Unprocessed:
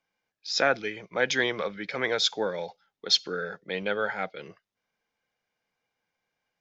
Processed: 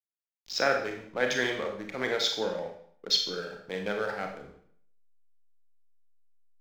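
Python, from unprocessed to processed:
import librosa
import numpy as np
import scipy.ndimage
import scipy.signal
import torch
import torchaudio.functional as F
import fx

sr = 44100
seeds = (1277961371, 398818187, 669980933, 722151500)

y = fx.wiener(x, sr, points=15)
y = fx.backlash(y, sr, play_db=-38.5)
y = fx.rev_schroeder(y, sr, rt60_s=0.6, comb_ms=28, drr_db=2.5)
y = y * 10.0 ** (-3.0 / 20.0)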